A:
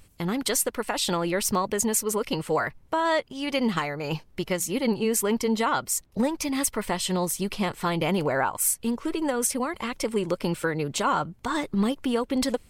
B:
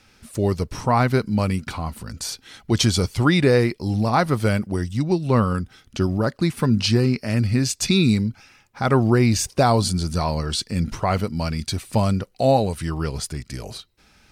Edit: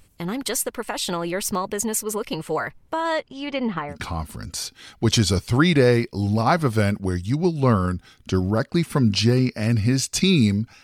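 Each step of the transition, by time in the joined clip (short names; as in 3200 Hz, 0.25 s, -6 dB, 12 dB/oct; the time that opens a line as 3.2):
A
3.13–3.98 LPF 11000 Hz -> 1100 Hz
3.93 switch to B from 1.6 s, crossfade 0.10 s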